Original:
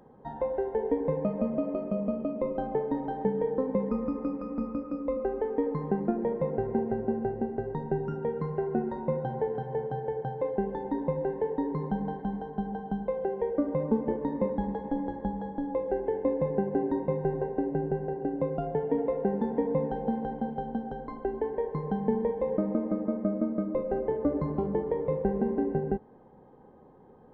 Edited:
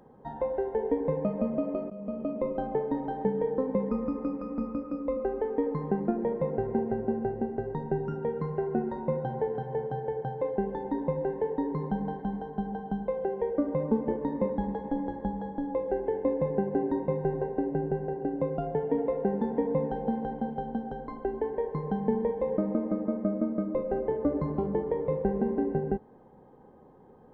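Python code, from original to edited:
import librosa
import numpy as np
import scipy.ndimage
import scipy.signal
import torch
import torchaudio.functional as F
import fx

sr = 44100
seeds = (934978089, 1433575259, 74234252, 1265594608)

y = fx.edit(x, sr, fx.fade_in_from(start_s=1.9, length_s=0.39, floor_db=-16.5), tone=tone)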